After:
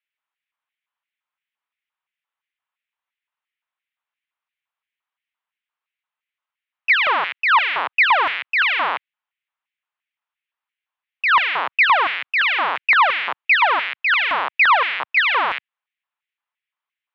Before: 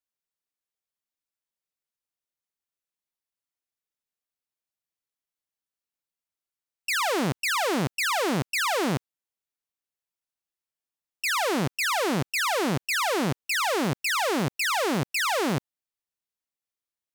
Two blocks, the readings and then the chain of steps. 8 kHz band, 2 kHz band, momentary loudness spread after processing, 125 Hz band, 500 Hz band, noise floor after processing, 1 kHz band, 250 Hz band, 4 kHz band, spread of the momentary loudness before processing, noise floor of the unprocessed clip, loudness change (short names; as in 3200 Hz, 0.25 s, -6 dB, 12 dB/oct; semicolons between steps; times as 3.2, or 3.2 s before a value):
under -25 dB, +12.0 dB, 6 LU, under -25 dB, -3.0 dB, under -85 dBFS, +10.0 dB, -17.0 dB, +5.5 dB, 3 LU, under -85 dBFS, +8.5 dB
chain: mistuned SSB -92 Hz 180–3400 Hz; LFO high-pass square 2.9 Hz 1000–2100 Hz; gain +8 dB